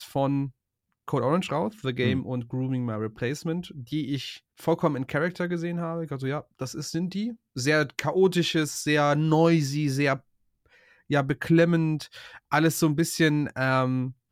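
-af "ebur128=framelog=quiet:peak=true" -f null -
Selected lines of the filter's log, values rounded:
Integrated loudness:
  I:         -26.1 LUFS
  Threshold: -36.4 LUFS
Loudness range:
  LRA:         5.4 LU
  Threshold: -46.5 LUFS
  LRA low:   -29.5 LUFS
  LRA high:  -24.2 LUFS
True peak:
  Peak:       -8.8 dBFS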